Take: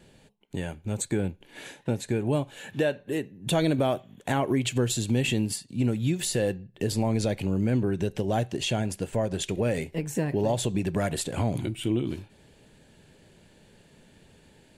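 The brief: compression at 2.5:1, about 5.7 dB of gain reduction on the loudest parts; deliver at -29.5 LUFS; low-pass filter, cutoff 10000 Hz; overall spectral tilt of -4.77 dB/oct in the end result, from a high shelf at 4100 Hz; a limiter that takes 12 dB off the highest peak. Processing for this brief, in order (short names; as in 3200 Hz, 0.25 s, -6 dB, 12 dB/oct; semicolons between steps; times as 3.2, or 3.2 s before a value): LPF 10000 Hz; high shelf 4100 Hz +3 dB; compressor 2.5:1, threshold -29 dBFS; gain +10 dB; limiter -20 dBFS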